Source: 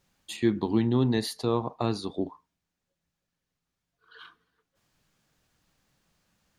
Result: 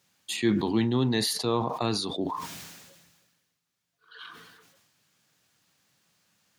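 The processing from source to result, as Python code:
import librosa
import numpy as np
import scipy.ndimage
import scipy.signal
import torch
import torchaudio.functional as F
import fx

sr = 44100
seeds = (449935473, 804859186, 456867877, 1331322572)

y = scipy.signal.sosfilt(scipy.signal.butter(4, 94.0, 'highpass', fs=sr, output='sos'), x)
y = fx.tilt_shelf(y, sr, db=-4.0, hz=1400.0)
y = fx.sustainer(y, sr, db_per_s=39.0)
y = y * librosa.db_to_amplitude(2.0)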